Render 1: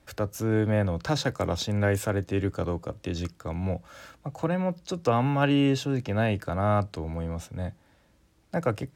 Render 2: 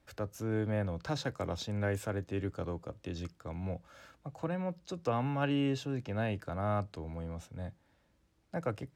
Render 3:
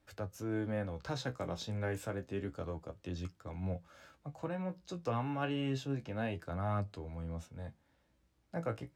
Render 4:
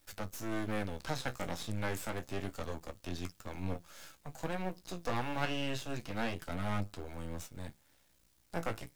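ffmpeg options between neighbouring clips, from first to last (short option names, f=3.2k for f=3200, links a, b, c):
-af "highshelf=f=7.8k:g=-5,volume=-8.5dB"
-af "flanger=delay=9.7:depth=8.3:regen=42:speed=0.29:shape=triangular,volume=1dB"
-filter_complex "[0:a]acrossover=split=2600[a][b];[b]acompressor=threshold=-57dB:ratio=4:attack=1:release=60[c];[a][c]amix=inputs=2:normalize=0,crystalizer=i=5.5:c=0,aeval=exprs='max(val(0),0)':c=same,volume=3.5dB"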